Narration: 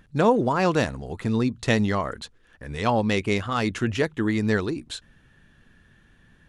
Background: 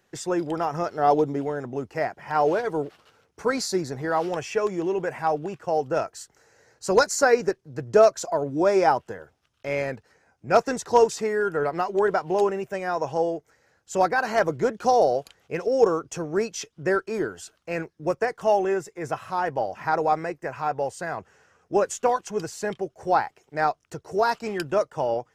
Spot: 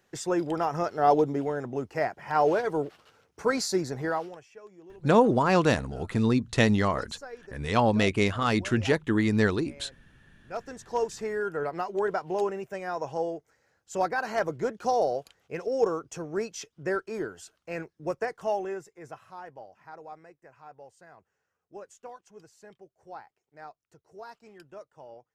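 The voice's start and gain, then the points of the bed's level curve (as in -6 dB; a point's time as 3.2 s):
4.90 s, -0.5 dB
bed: 4.08 s -1.5 dB
4.48 s -24 dB
10.08 s -24 dB
11.31 s -6 dB
18.33 s -6 dB
19.86 s -22 dB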